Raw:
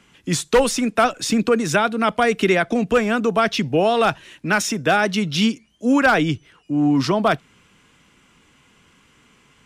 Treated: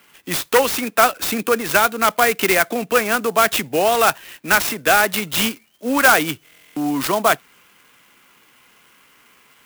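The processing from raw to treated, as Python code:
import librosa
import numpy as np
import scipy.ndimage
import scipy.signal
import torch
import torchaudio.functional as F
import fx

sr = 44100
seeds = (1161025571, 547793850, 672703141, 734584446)

y = fx.highpass(x, sr, hz=970.0, slope=6)
y = fx.high_shelf(y, sr, hz=8700.0, db=-11.5)
y = fx.buffer_glitch(y, sr, at_s=(6.44,), block=1024, repeats=13)
y = fx.clock_jitter(y, sr, seeds[0], jitter_ms=0.045)
y = y * 10.0 ** (6.5 / 20.0)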